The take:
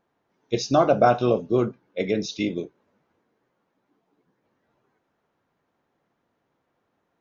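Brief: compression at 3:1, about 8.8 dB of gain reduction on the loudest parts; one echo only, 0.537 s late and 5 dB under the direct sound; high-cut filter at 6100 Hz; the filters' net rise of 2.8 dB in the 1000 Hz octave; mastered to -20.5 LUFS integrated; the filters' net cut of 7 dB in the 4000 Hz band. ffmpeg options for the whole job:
-af "lowpass=6.1k,equalizer=f=1k:t=o:g=5,equalizer=f=4k:t=o:g=-8,acompressor=threshold=-23dB:ratio=3,aecho=1:1:537:0.562,volume=7.5dB"

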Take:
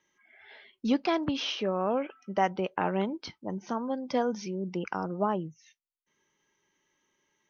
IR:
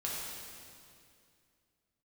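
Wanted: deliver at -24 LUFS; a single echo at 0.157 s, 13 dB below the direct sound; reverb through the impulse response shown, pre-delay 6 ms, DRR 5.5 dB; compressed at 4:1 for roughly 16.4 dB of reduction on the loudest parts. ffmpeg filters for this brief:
-filter_complex "[0:a]acompressor=threshold=-41dB:ratio=4,aecho=1:1:157:0.224,asplit=2[a][b];[1:a]atrim=start_sample=2205,adelay=6[c];[b][c]afir=irnorm=-1:irlink=0,volume=-9dB[d];[a][d]amix=inputs=2:normalize=0,volume=18.5dB"

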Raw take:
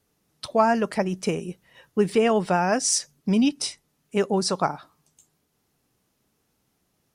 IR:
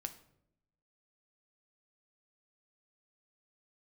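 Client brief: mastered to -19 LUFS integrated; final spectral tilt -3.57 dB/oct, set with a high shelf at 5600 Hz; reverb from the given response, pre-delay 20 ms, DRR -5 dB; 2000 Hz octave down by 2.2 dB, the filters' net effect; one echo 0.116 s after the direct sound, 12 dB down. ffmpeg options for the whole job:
-filter_complex "[0:a]equalizer=f=2k:t=o:g=-4,highshelf=f=5.6k:g=7.5,aecho=1:1:116:0.251,asplit=2[a][b];[1:a]atrim=start_sample=2205,adelay=20[c];[b][c]afir=irnorm=-1:irlink=0,volume=7.5dB[d];[a][d]amix=inputs=2:normalize=0,volume=-3dB"

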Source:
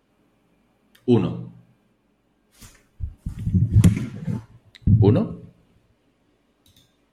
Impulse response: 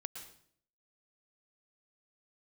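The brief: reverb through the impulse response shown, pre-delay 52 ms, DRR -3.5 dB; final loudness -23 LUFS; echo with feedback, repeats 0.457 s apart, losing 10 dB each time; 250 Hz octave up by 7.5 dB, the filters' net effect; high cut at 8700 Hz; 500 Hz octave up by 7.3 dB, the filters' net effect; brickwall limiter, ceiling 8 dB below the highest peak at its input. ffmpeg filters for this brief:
-filter_complex "[0:a]lowpass=8.7k,equalizer=f=250:t=o:g=8.5,equalizer=f=500:t=o:g=6,alimiter=limit=-6dB:level=0:latency=1,aecho=1:1:457|914|1371|1828:0.316|0.101|0.0324|0.0104,asplit=2[a][b];[1:a]atrim=start_sample=2205,adelay=52[c];[b][c]afir=irnorm=-1:irlink=0,volume=6dB[d];[a][d]amix=inputs=2:normalize=0,volume=-8dB"

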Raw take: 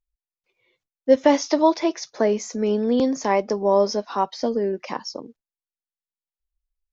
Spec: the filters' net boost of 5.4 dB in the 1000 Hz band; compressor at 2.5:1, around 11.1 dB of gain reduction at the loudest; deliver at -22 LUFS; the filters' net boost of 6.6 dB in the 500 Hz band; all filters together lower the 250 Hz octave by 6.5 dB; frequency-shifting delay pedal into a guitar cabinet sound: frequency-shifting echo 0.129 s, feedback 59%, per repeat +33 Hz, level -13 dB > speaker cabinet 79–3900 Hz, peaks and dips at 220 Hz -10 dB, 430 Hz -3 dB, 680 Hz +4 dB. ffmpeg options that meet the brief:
-filter_complex "[0:a]equalizer=f=250:t=o:g=-8,equalizer=f=500:t=o:g=8.5,equalizer=f=1k:t=o:g=3,acompressor=threshold=-21dB:ratio=2.5,asplit=7[a][b][c][d][e][f][g];[b]adelay=129,afreqshift=33,volume=-13dB[h];[c]adelay=258,afreqshift=66,volume=-17.6dB[i];[d]adelay=387,afreqshift=99,volume=-22.2dB[j];[e]adelay=516,afreqshift=132,volume=-26.7dB[k];[f]adelay=645,afreqshift=165,volume=-31.3dB[l];[g]adelay=774,afreqshift=198,volume=-35.9dB[m];[a][h][i][j][k][l][m]amix=inputs=7:normalize=0,highpass=79,equalizer=f=220:t=q:w=4:g=-10,equalizer=f=430:t=q:w=4:g=-3,equalizer=f=680:t=q:w=4:g=4,lowpass=f=3.9k:w=0.5412,lowpass=f=3.9k:w=1.3066,volume=2dB"

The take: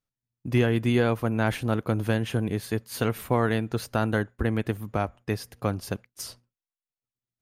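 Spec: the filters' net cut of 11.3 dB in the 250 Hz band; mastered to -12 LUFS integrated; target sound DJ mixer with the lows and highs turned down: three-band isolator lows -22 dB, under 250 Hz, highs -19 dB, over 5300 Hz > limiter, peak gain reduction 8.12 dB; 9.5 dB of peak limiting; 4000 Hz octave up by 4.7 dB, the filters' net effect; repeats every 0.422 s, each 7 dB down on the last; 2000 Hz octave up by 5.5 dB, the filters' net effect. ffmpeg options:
-filter_complex "[0:a]equalizer=f=250:t=o:g=-8.5,equalizer=f=2k:t=o:g=6.5,equalizer=f=4k:t=o:g=5.5,alimiter=limit=-19.5dB:level=0:latency=1,acrossover=split=250 5300:gain=0.0794 1 0.112[a][b][c];[a][b][c]amix=inputs=3:normalize=0,aecho=1:1:422|844|1266|1688|2110:0.447|0.201|0.0905|0.0407|0.0183,volume=25dB,alimiter=limit=0dB:level=0:latency=1"

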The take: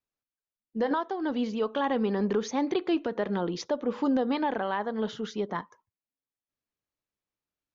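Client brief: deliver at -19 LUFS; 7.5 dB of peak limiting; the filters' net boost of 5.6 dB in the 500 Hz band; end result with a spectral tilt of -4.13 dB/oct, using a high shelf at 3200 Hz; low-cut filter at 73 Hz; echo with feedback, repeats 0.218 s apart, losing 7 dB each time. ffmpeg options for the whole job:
-af "highpass=73,equalizer=f=500:t=o:g=6.5,highshelf=f=3.2k:g=8,alimiter=limit=-19.5dB:level=0:latency=1,aecho=1:1:218|436|654|872|1090:0.447|0.201|0.0905|0.0407|0.0183,volume=9.5dB"

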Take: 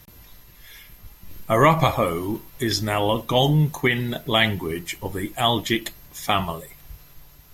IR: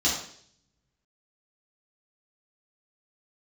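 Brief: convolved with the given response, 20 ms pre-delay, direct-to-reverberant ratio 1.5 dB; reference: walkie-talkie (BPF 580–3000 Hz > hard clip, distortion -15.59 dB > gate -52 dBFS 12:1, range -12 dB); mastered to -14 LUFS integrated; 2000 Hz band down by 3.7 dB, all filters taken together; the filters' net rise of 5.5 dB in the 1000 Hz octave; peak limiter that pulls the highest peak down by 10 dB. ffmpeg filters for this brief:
-filter_complex "[0:a]equalizer=f=1k:t=o:g=9,equalizer=f=2k:t=o:g=-5.5,alimiter=limit=-9dB:level=0:latency=1,asplit=2[a][b];[1:a]atrim=start_sample=2205,adelay=20[c];[b][c]afir=irnorm=-1:irlink=0,volume=-13dB[d];[a][d]amix=inputs=2:normalize=0,highpass=580,lowpass=3k,asoftclip=type=hard:threshold=-13.5dB,agate=range=-12dB:threshold=-52dB:ratio=12,volume=9.5dB"

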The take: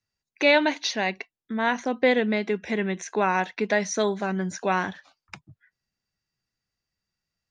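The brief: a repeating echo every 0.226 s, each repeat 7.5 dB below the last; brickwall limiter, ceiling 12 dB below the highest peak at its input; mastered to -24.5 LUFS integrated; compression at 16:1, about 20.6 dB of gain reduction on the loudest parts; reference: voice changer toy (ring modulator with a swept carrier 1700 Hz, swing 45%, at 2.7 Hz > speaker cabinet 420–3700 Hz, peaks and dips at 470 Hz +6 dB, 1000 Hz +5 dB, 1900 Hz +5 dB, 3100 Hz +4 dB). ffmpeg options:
-af "acompressor=threshold=-35dB:ratio=16,alimiter=level_in=8.5dB:limit=-24dB:level=0:latency=1,volume=-8.5dB,aecho=1:1:226|452|678|904|1130:0.422|0.177|0.0744|0.0312|0.0131,aeval=exprs='val(0)*sin(2*PI*1700*n/s+1700*0.45/2.7*sin(2*PI*2.7*n/s))':c=same,highpass=420,equalizer=f=470:t=q:w=4:g=6,equalizer=f=1k:t=q:w=4:g=5,equalizer=f=1.9k:t=q:w=4:g=5,equalizer=f=3.1k:t=q:w=4:g=4,lowpass=f=3.7k:w=0.5412,lowpass=f=3.7k:w=1.3066,volume=17dB"

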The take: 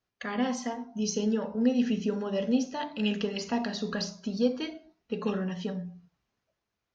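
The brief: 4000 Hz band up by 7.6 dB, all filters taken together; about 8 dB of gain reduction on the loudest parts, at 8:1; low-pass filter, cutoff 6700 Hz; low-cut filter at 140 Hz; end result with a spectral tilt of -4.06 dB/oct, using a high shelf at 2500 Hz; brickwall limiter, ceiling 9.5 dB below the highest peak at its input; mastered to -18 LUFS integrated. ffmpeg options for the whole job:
-af "highpass=140,lowpass=6.7k,highshelf=f=2.5k:g=6,equalizer=f=4k:t=o:g=5.5,acompressor=threshold=-28dB:ratio=8,volume=18dB,alimiter=limit=-8.5dB:level=0:latency=1"

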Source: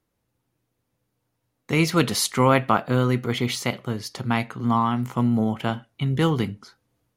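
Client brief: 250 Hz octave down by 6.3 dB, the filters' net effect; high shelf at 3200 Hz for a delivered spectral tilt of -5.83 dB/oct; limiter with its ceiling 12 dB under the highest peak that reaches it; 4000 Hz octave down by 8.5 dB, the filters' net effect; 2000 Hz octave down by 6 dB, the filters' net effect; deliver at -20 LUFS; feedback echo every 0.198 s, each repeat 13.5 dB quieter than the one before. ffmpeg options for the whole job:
-af "equalizer=f=250:t=o:g=-8,equalizer=f=2k:t=o:g=-4,highshelf=f=3.2k:g=-7,equalizer=f=4k:t=o:g=-4.5,alimiter=limit=-19dB:level=0:latency=1,aecho=1:1:198|396:0.211|0.0444,volume=10.5dB"

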